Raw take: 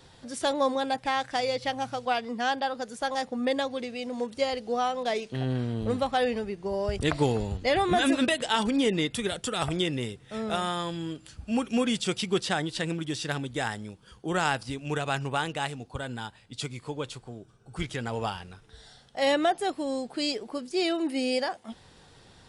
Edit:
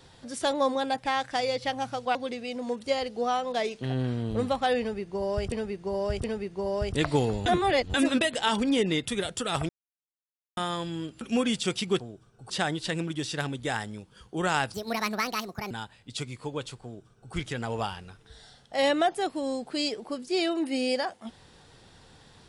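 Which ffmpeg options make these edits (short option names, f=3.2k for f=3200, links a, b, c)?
-filter_complex "[0:a]asplit=13[a][b][c][d][e][f][g][h][i][j][k][l][m];[a]atrim=end=2.152[n];[b]atrim=start=3.658:end=7.032[o];[c]atrim=start=6.308:end=7.032[p];[d]atrim=start=6.308:end=7.532[q];[e]atrim=start=7.528:end=8.012,asetpts=PTS-STARTPTS,areverse[r];[f]atrim=start=8.008:end=9.76,asetpts=PTS-STARTPTS,afade=t=out:st=1.748:d=0.004:c=hsin[s];[g]atrim=start=9.76:end=10.64,asetpts=PTS-STARTPTS,volume=0[t];[h]atrim=start=10.64:end=11.282,asetpts=PTS-STARTPTS,afade=t=in:d=0.004:c=hsin[u];[i]atrim=start=11.618:end=12.412[v];[j]atrim=start=17.268:end=17.772[w];[k]atrim=start=12.408:end=14.654[x];[l]atrim=start=14.65:end=16.14,asetpts=PTS-STARTPTS,asetrate=67914,aresample=44100,atrim=end_sample=42668,asetpts=PTS-STARTPTS[y];[m]atrim=start=16.136[z];[n][o]acrossfade=d=0.004:c1=hsin:c2=hsin[aa];[aa][p]acrossfade=d=0.004:c1=hsin:c2=hsin[ab];[ab][q]acrossfade=d=0.004:c1=hsin:c2=hsin[ac];[ac][r]acrossfade=d=0.004:c1=hsin:c2=hsin[ad];[s][t][u]concat=n=3:v=0:a=1[ae];[ad][ae]acrossfade=d=0.004:c1=hsin:c2=hsin[af];[af][v]acrossfade=d=0.004:c1=hsin:c2=hsin[ag];[ag][w]acrossfade=d=0.004:c1=hsin:c2=hsin[ah];[ah][x]acrossfade=d=0.004:c1=hsin:c2=hsin[ai];[ai][y]acrossfade=d=0.004:c1=hsin:c2=hsin[aj];[aj][z]acrossfade=d=0.004:c1=hsin:c2=hsin"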